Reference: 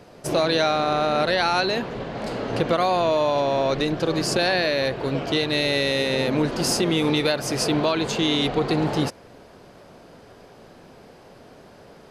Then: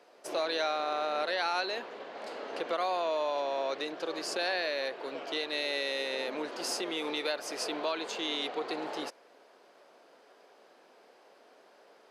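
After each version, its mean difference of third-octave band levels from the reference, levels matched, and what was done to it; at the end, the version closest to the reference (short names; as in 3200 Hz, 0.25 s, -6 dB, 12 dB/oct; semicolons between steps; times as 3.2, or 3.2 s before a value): 5.5 dB: Bessel high-pass 480 Hz, order 4; high shelf 7000 Hz -5.5 dB; gain -8.5 dB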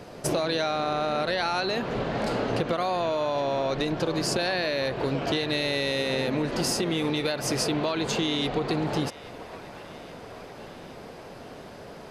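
3.5 dB: compressor 6:1, threshold -28 dBFS, peak gain reduction 11 dB; on a send: band-limited delay 0.826 s, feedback 67%, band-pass 1300 Hz, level -14 dB; on the sum: gain +4 dB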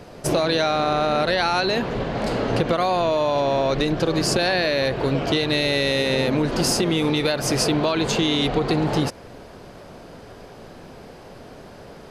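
2.0 dB: low shelf 72 Hz +7.5 dB; compressor, threshold -22 dBFS, peak gain reduction 6 dB; gain +5 dB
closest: third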